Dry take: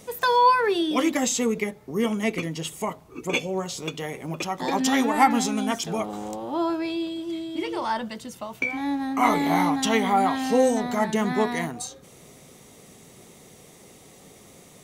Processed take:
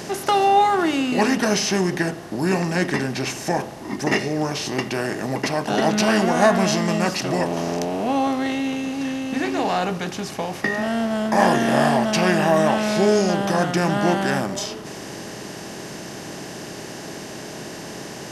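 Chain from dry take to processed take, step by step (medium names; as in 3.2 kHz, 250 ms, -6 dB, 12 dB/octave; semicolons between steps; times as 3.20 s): spectral levelling over time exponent 0.6; tape speed -19%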